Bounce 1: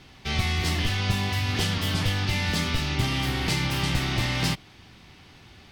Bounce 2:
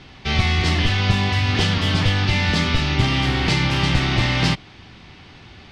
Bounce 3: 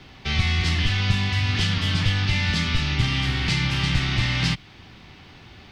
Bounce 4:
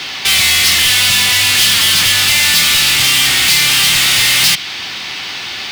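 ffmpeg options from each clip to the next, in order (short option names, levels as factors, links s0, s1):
-af "lowpass=5000,volume=2.24"
-filter_complex "[0:a]acrossover=split=230|1200[s0][s1][s2];[s1]acompressor=threshold=0.0141:ratio=6[s3];[s0][s3][s2]amix=inputs=3:normalize=0,acrusher=bits=11:mix=0:aa=0.000001,volume=0.75"
-filter_complex "[0:a]asplit=2[s0][s1];[s1]highpass=f=720:p=1,volume=35.5,asoftclip=type=tanh:threshold=0.398[s2];[s0][s2]amix=inputs=2:normalize=0,lowpass=f=5100:p=1,volume=0.501,crystalizer=i=7:c=0,volume=0.501"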